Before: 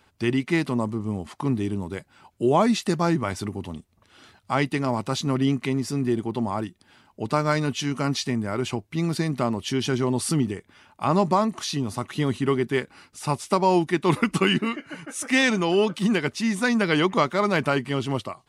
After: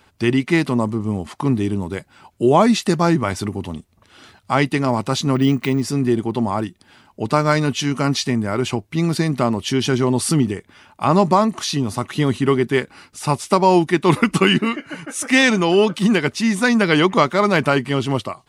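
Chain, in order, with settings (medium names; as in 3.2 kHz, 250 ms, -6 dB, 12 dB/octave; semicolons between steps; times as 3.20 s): 5.35–5.82 s: careless resampling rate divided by 2×, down filtered, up hold; trim +6 dB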